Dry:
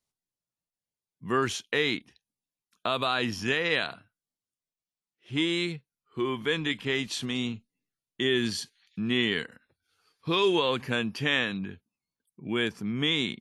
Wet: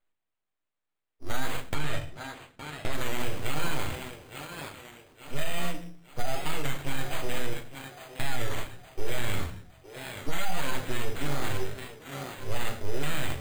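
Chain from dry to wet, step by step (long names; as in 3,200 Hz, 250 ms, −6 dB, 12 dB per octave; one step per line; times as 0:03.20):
full-wave rectification
0:09.35–0:10.33: high-shelf EQ 2,300 Hz −11.5 dB
feedback echo with a high-pass in the loop 864 ms, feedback 45%, high-pass 170 Hz, level −11.5 dB
rectangular room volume 50 cubic metres, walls mixed, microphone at 0.49 metres
brickwall limiter −15.5 dBFS, peak gain reduction 9 dB
decimation without filtering 8×
0:01.74–0:02.94: high-shelf EQ 9,700 Hz −10 dB
wow of a warped record 33 1/3 rpm, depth 100 cents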